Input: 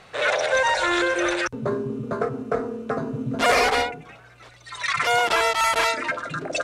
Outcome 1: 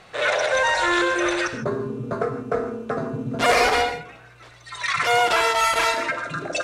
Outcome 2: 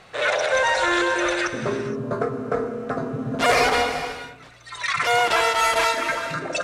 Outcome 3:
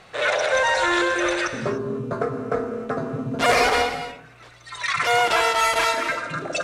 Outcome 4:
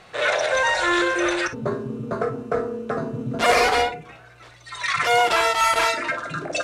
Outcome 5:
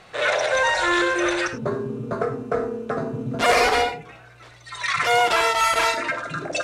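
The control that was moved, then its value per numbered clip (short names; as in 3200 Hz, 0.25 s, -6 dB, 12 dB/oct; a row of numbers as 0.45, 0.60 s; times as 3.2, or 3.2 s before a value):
non-linear reverb, gate: 180, 500, 320, 80, 120 ms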